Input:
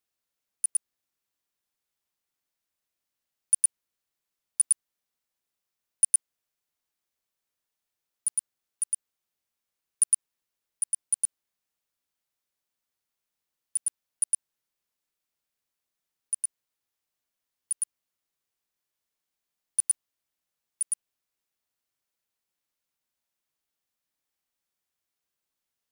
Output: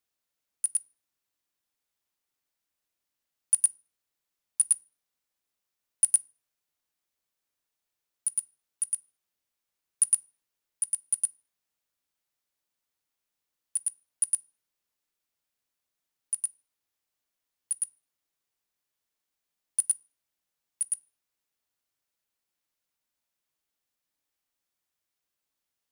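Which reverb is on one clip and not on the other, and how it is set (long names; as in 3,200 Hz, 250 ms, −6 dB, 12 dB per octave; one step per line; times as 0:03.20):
feedback delay network reverb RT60 0.39 s, low-frequency decay 1.2×, high-frequency decay 0.75×, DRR 17.5 dB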